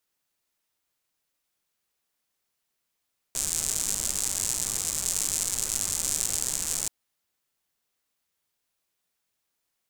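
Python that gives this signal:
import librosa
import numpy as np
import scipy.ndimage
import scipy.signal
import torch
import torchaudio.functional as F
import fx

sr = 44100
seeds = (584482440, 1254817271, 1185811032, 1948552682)

y = fx.rain(sr, seeds[0], length_s=3.53, drops_per_s=160.0, hz=7500.0, bed_db=-11.5)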